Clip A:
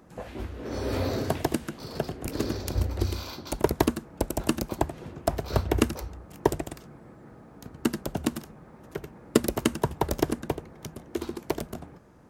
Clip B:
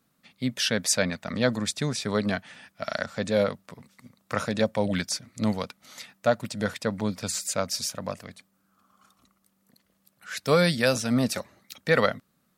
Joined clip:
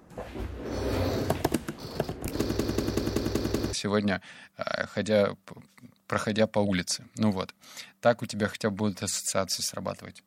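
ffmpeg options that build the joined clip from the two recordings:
ffmpeg -i cue0.wav -i cue1.wav -filter_complex "[0:a]apad=whole_dur=10.26,atrim=end=10.26,asplit=7[link_01][link_02][link_03][link_04][link_05][link_06][link_07];[link_01]atrim=end=2.592[link_08];[link_02]atrim=start=2.398:end=2.592[link_09];[link_03]atrim=start=2.398:end=2.592[link_10];[link_04]atrim=start=2.398:end=2.592[link_11];[link_05]atrim=start=2.398:end=2.592[link_12];[link_06]atrim=start=2.398:end=2.592[link_13];[link_07]atrim=start=2.398:end=2.592[link_14];[1:a]atrim=start=1.938:end=8.47[link_15];[link_08][link_09]acrossfade=duration=0.004:curve1=hsin:curve2=hsin[link_16];[link_16][link_10]acrossfade=duration=0.004:curve1=hsin:curve2=hsin[link_17];[link_17][link_11]acrossfade=duration=0.004:curve1=hsin:curve2=hsin[link_18];[link_18][link_12]acrossfade=duration=0.004:curve1=hsin:curve2=hsin[link_19];[link_19][link_13]acrossfade=duration=0.004:curve1=hsin:curve2=hsin[link_20];[link_20][link_14]acrossfade=duration=0.004:curve1=hsin:curve2=hsin[link_21];[link_21][link_15]acrossfade=duration=0.004:curve1=hsin:curve2=hsin" out.wav

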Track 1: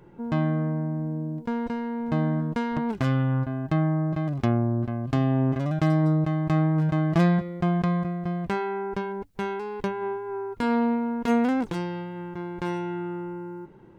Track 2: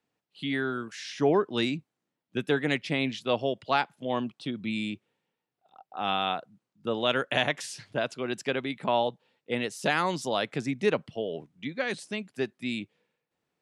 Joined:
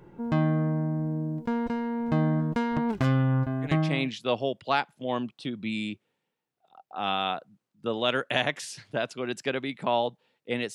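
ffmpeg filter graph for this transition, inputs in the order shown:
ffmpeg -i cue0.wav -i cue1.wav -filter_complex "[0:a]apad=whole_dur=10.74,atrim=end=10.74,atrim=end=4.11,asetpts=PTS-STARTPTS[link_01];[1:a]atrim=start=2.58:end=9.75,asetpts=PTS-STARTPTS[link_02];[link_01][link_02]acrossfade=duration=0.54:curve1=qsin:curve2=qsin" out.wav

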